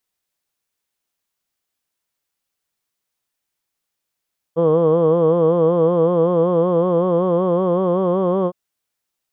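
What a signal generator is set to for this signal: formant vowel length 3.96 s, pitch 161 Hz, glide +2.5 st, F1 480 Hz, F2 1100 Hz, F3 3200 Hz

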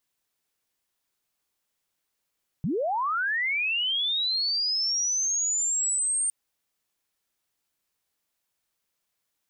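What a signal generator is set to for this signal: chirp linear 130 Hz -> 8800 Hz -24 dBFS -> -23 dBFS 3.66 s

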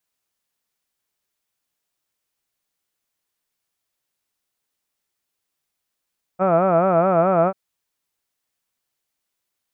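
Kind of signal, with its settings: formant vowel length 1.14 s, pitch 178 Hz, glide 0 st, vibrato 4.7 Hz, vibrato depth 1.4 st, F1 640 Hz, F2 1300 Hz, F3 2400 Hz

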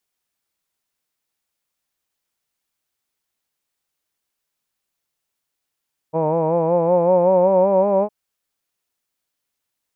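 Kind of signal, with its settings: formant vowel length 1.96 s, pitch 156 Hz, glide +4.5 st, vibrato depth 0.7 st, F1 550 Hz, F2 930 Hz, F3 2400 Hz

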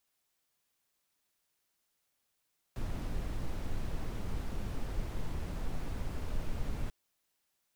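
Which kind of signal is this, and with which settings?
noise brown, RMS -34 dBFS 4.14 s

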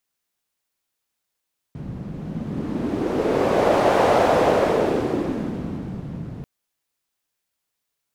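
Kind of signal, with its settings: wind-like swept noise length 4.69 s, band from 150 Hz, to 610 Hz, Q 2.1, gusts 1, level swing 16 dB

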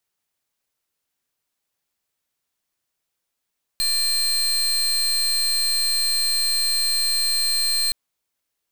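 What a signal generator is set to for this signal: pulse 4170 Hz, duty 33% -21 dBFS 4.12 s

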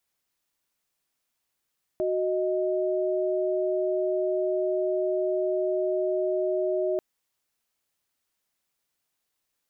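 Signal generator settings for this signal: chord F#4/D#5 sine, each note -26 dBFS 4.99 s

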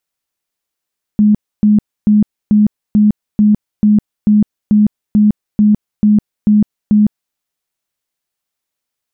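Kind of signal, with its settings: tone bursts 210 Hz, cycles 33, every 0.44 s, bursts 14, -5.5 dBFS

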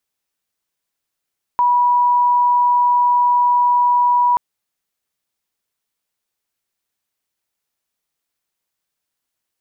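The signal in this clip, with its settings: tone sine 975 Hz -11 dBFS 2.78 s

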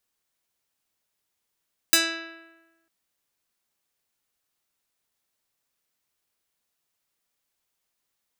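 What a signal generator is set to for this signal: plucked string E4, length 0.95 s, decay 1.19 s, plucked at 0.3, medium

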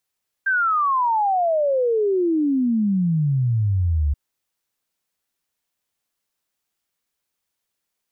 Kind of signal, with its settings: log sweep 1600 Hz -> 69 Hz 3.68 s -16.5 dBFS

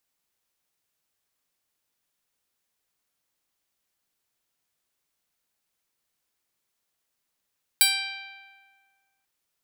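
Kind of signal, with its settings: plucked string G5, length 1.44 s, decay 1.80 s, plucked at 0.12, bright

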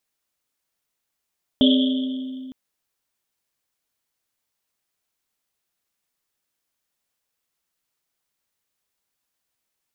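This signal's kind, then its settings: Risset drum length 0.91 s, pitch 260 Hz, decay 2.65 s, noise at 3300 Hz, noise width 510 Hz, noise 25%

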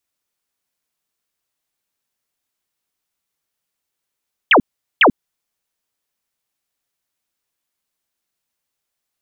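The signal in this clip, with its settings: burst of laser zaps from 3500 Hz, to 190 Hz, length 0.09 s sine, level -6.5 dB, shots 2, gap 0.41 s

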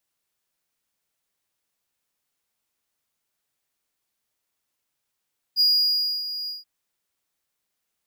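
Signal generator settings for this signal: ADSR triangle 4870 Hz, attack 44 ms, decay 0.626 s, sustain -13 dB, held 0.92 s, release 0.161 s -13 dBFS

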